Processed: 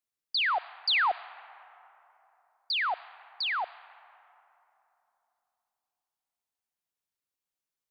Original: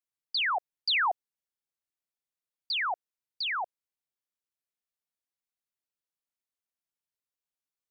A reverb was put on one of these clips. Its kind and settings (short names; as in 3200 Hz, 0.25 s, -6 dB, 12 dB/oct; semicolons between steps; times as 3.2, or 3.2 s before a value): digital reverb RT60 3.4 s, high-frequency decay 0.4×, pre-delay 15 ms, DRR 17 dB; gain +1 dB